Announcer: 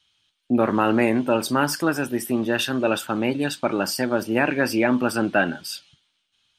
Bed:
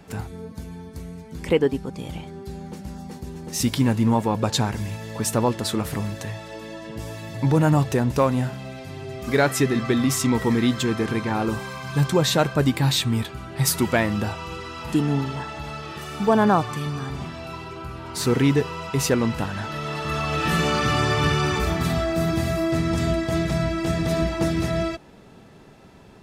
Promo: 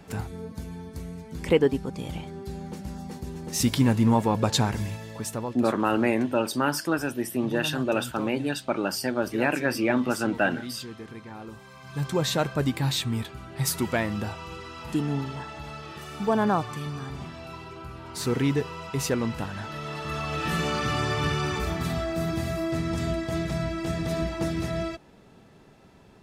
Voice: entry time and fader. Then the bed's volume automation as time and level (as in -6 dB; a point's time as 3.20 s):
5.05 s, -4.0 dB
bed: 4.81 s -1 dB
5.79 s -17 dB
11.57 s -17 dB
12.20 s -5.5 dB